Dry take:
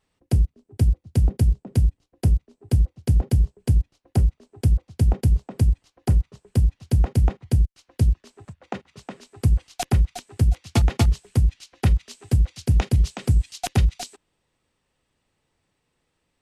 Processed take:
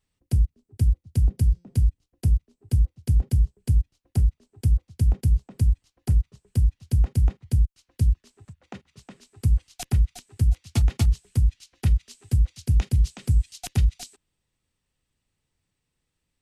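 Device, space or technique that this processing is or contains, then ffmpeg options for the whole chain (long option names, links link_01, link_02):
smiley-face EQ: -filter_complex "[0:a]lowshelf=frequency=150:gain=6.5,equalizer=frequency=640:width_type=o:width=2.4:gain=-6,highshelf=frequency=5700:gain=5.5,asplit=3[link_01][link_02][link_03];[link_01]afade=type=out:start_time=1.37:duration=0.02[link_04];[link_02]bandreject=frequency=174:width_type=h:width=4,bandreject=frequency=348:width_type=h:width=4,bandreject=frequency=522:width_type=h:width=4,bandreject=frequency=696:width_type=h:width=4,bandreject=frequency=870:width_type=h:width=4,bandreject=frequency=1044:width_type=h:width=4,bandreject=frequency=1218:width_type=h:width=4,bandreject=frequency=1392:width_type=h:width=4,bandreject=frequency=1566:width_type=h:width=4,bandreject=frequency=1740:width_type=h:width=4,bandreject=frequency=1914:width_type=h:width=4,bandreject=frequency=2088:width_type=h:width=4,bandreject=frequency=2262:width_type=h:width=4,bandreject=frequency=2436:width_type=h:width=4,bandreject=frequency=2610:width_type=h:width=4,bandreject=frequency=2784:width_type=h:width=4,bandreject=frequency=2958:width_type=h:width=4,bandreject=frequency=3132:width_type=h:width=4,bandreject=frequency=3306:width_type=h:width=4,bandreject=frequency=3480:width_type=h:width=4,bandreject=frequency=3654:width_type=h:width=4,bandreject=frequency=3828:width_type=h:width=4,bandreject=frequency=4002:width_type=h:width=4,bandreject=frequency=4176:width_type=h:width=4,bandreject=frequency=4350:width_type=h:width=4,bandreject=frequency=4524:width_type=h:width=4,bandreject=frequency=4698:width_type=h:width=4,bandreject=frequency=4872:width_type=h:width=4,bandreject=frequency=5046:width_type=h:width=4,bandreject=frequency=5220:width_type=h:width=4,bandreject=frequency=5394:width_type=h:width=4,bandreject=frequency=5568:width_type=h:width=4,bandreject=frequency=5742:width_type=h:width=4,bandreject=frequency=5916:width_type=h:width=4,bandreject=frequency=6090:width_type=h:width=4,bandreject=frequency=6264:width_type=h:width=4,afade=type=in:start_time=1.37:duration=0.02,afade=type=out:start_time=1.88:duration=0.02[link_05];[link_03]afade=type=in:start_time=1.88:duration=0.02[link_06];[link_04][link_05][link_06]amix=inputs=3:normalize=0,volume=-6.5dB"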